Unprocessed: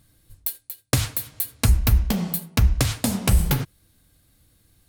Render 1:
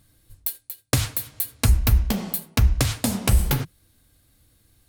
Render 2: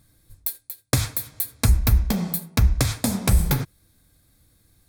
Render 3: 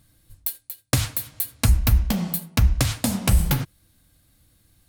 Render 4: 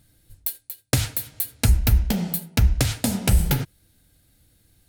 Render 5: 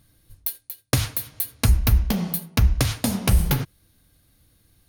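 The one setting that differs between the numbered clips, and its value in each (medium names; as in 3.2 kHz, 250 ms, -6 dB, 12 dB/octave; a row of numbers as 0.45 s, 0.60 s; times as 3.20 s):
band-stop, frequency: 170 Hz, 2.9 kHz, 420 Hz, 1.1 kHz, 7.7 kHz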